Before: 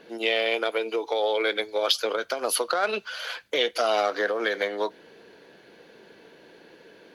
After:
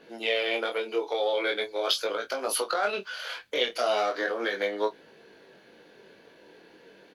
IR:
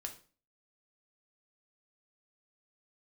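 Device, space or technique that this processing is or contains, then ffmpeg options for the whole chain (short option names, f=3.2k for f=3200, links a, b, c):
double-tracked vocal: -filter_complex "[0:a]asplit=2[a][b];[b]adelay=26,volume=-10dB[c];[a][c]amix=inputs=2:normalize=0,flanger=delay=18.5:depth=5.8:speed=0.4"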